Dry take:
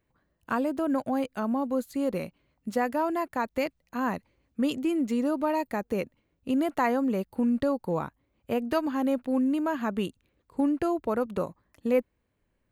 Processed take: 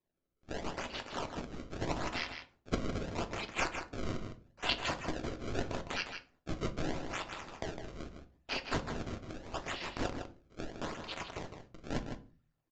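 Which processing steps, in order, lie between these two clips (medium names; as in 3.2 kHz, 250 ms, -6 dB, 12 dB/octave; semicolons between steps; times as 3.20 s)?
gate with hold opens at -57 dBFS; steep high-pass 2.4 kHz 72 dB/octave; differentiator; in parallel at -1 dB: compression, threshold -58 dBFS, peak gain reduction 17.5 dB; on the sum: decimation with a swept rate 29×, swing 160% 0.79 Hz; echo from a far wall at 27 m, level -7 dB; on a send at -8 dB: reverberation RT60 0.35 s, pre-delay 3 ms; on the sum: resampled via 16 kHz; trim +12 dB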